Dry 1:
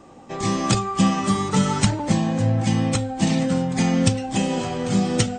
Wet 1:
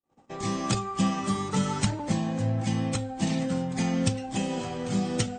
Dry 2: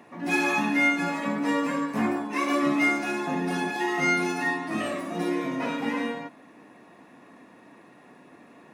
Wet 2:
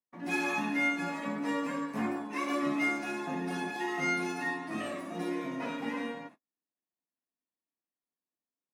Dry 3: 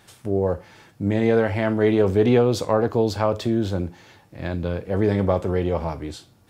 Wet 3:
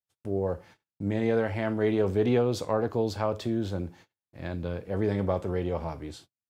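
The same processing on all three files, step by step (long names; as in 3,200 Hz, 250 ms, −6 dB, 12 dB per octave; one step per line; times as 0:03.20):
noise gate −43 dBFS, range −44 dB
level −7 dB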